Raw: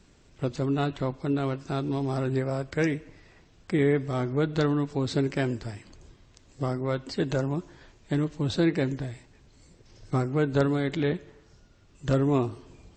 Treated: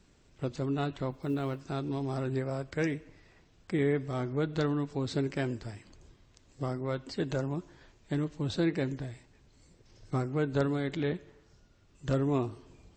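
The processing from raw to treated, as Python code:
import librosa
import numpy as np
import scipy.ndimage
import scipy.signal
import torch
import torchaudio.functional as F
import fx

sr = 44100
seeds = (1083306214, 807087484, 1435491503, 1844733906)

y = fx.block_float(x, sr, bits=7, at=(1.11, 1.63))
y = F.gain(torch.from_numpy(y), -5.0).numpy()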